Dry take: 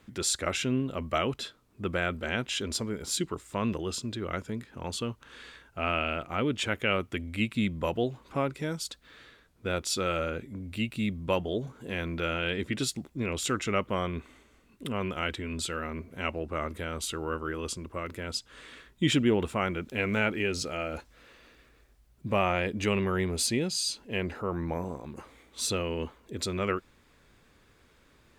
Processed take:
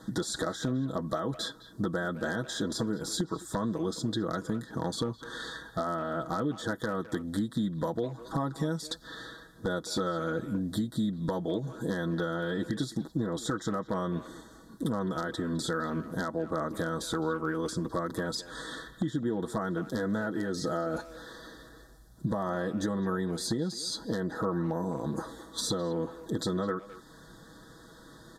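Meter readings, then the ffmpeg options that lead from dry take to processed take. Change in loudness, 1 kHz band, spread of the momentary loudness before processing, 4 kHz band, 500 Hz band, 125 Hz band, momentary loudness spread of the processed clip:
-1.5 dB, -1.5 dB, 10 LU, -4.5 dB, -1.0 dB, 0.0 dB, 8 LU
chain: -filter_complex "[0:a]highpass=f=49:p=1,deesser=0.95,equalizer=f=240:t=o:w=0.24:g=12.5,aecho=1:1:6.2:0.77,alimiter=limit=-18.5dB:level=0:latency=1:release=434,acompressor=threshold=-36dB:ratio=6,aeval=exprs='0.0376*(abs(mod(val(0)/0.0376+3,4)-2)-1)':c=same,asuperstop=centerf=2500:order=12:qfactor=1.7,asplit=2[a][b];[b]adelay=210,highpass=300,lowpass=3.4k,asoftclip=type=hard:threshold=-36dB,volume=-14dB[c];[a][c]amix=inputs=2:normalize=0,aresample=32000,aresample=44100,volume=8.5dB"

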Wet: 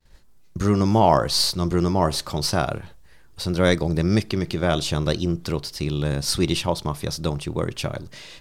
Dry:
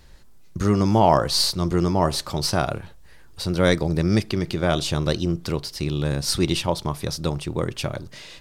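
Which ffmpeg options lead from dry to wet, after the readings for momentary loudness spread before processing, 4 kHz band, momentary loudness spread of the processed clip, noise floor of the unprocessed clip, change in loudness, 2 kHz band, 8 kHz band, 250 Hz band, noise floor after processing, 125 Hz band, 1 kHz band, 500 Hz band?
10 LU, 0.0 dB, 10 LU, -46 dBFS, 0.0 dB, 0.0 dB, 0.0 dB, 0.0 dB, -49 dBFS, 0.0 dB, 0.0 dB, 0.0 dB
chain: -af "agate=range=-33dB:threshold=-42dB:ratio=3:detection=peak"

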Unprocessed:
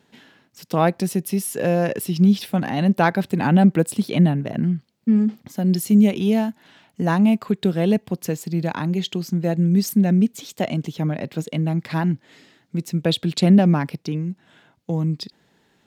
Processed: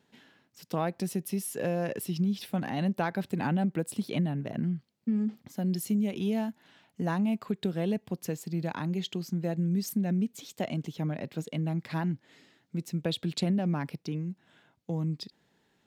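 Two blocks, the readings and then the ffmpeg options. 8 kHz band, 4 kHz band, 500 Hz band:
-9.0 dB, -9.5 dB, -10.5 dB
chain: -af "acompressor=threshold=-16dB:ratio=6,volume=-8.5dB"

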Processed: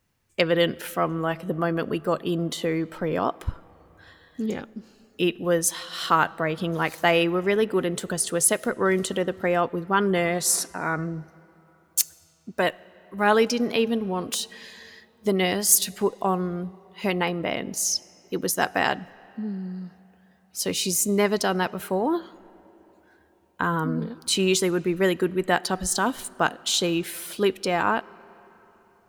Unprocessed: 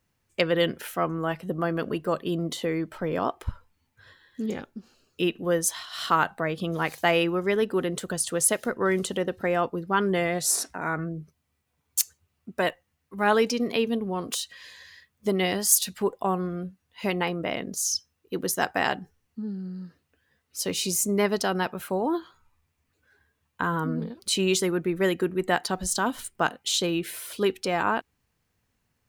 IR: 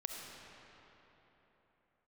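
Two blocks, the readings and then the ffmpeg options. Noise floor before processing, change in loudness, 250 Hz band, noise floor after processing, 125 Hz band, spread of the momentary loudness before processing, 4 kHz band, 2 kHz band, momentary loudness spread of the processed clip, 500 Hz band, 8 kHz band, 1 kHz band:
-76 dBFS, +2.0 dB, +2.0 dB, -60 dBFS, +2.0 dB, 12 LU, +2.0 dB, +2.0 dB, 12 LU, +2.0 dB, +2.0 dB, +2.0 dB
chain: -filter_complex "[0:a]asplit=2[a][b];[1:a]atrim=start_sample=2205[c];[b][c]afir=irnorm=-1:irlink=0,volume=-19dB[d];[a][d]amix=inputs=2:normalize=0,volume=1.5dB"

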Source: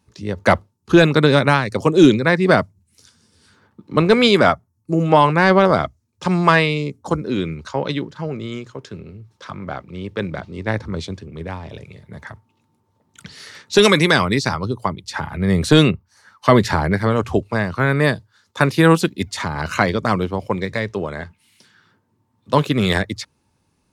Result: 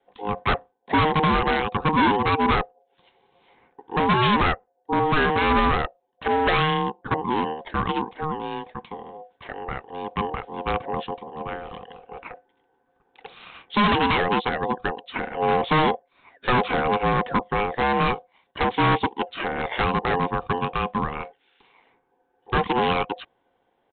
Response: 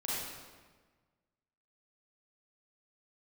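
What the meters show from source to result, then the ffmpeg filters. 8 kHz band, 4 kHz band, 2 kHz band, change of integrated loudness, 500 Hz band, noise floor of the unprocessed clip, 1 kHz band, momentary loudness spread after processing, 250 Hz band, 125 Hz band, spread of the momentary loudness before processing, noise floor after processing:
under -40 dB, -6.0 dB, -5.0 dB, -6.0 dB, -8.0 dB, -66 dBFS, 0.0 dB, 16 LU, -8.5 dB, -9.0 dB, 18 LU, -70 dBFS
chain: -af "adynamicequalizer=threshold=0.0355:dfrequency=430:dqfactor=2.5:tfrequency=430:tqfactor=2.5:attack=5:release=100:ratio=0.375:range=2.5:mode=boostabove:tftype=bell,aeval=exprs='val(0)*sin(2*PI*620*n/s)':c=same,aresample=8000,asoftclip=type=hard:threshold=-15.5dB,aresample=44100"

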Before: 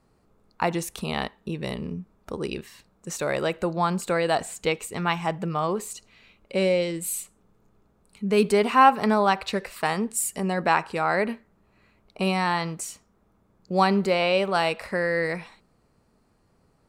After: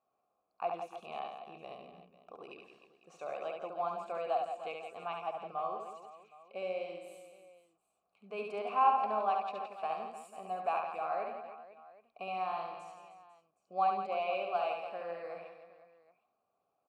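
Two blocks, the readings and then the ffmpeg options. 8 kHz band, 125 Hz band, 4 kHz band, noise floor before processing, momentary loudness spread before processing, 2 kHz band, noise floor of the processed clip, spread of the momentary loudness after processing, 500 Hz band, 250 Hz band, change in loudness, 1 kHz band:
under -30 dB, under -25 dB, -19.5 dB, -65 dBFS, 13 LU, -19.0 dB, -82 dBFS, 20 LU, -13.0 dB, -26.0 dB, -11.5 dB, -8.5 dB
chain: -filter_complex "[0:a]asplit=3[a][b][c];[a]bandpass=f=730:t=q:w=8,volume=0dB[d];[b]bandpass=f=1.09k:t=q:w=8,volume=-6dB[e];[c]bandpass=f=2.44k:t=q:w=8,volume=-9dB[f];[d][e][f]amix=inputs=3:normalize=0,aecho=1:1:70|168|305.2|497.3|766.2:0.631|0.398|0.251|0.158|0.1,volume=-4.5dB"

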